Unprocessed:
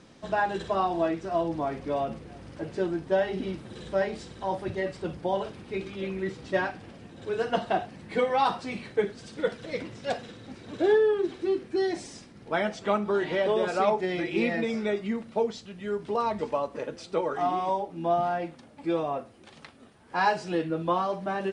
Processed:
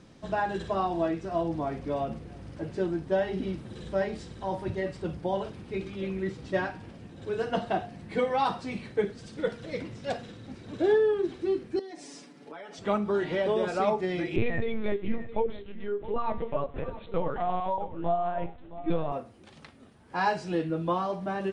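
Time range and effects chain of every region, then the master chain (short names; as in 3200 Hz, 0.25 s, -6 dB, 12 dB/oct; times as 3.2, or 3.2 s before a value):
11.79–12.78 HPF 220 Hz 24 dB/oct + comb 7 ms, depth 88% + compressor 5:1, threshold -39 dBFS
14.36–19.12 HPF 140 Hz + LPC vocoder at 8 kHz pitch kept + echo 0.667 s -15 dB
whole clip: low shelf 230 Hz +7.5 dB; de-hum 234.6 Hz, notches 38; gain -3 dB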